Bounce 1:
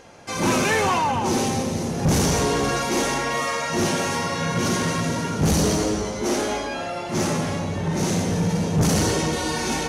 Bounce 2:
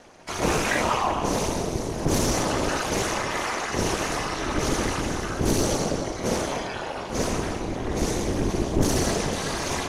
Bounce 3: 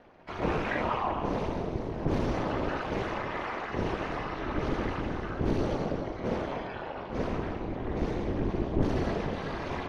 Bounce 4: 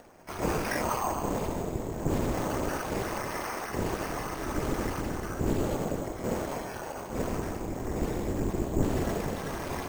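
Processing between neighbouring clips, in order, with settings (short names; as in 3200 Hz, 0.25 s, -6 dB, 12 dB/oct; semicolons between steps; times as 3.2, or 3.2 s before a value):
whisperiser; ring modulator 140 Hz
air absorption 360 m; gain -4.5 dB
upward compressor, threshold -49 dBFS; careless resampling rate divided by 6×, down none, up hold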